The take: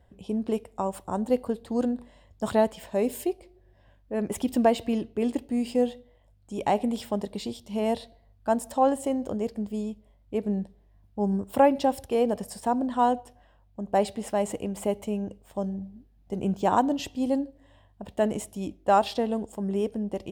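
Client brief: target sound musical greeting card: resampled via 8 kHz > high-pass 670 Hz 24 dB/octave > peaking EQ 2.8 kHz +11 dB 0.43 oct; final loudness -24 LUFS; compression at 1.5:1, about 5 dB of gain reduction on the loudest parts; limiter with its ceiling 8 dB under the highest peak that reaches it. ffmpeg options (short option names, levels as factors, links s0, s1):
-af "acompressor=threshold=0.0398:ratio=1.5,alimiter=limit=0.0891:level=0:latency=1,aresample=8000,aresample=44100,highpass=f=670:w=0.5412,highpass=f=670:w=1.3066,equalizer=f=2800:t=o:w=0.43:g=11,volume=5.62"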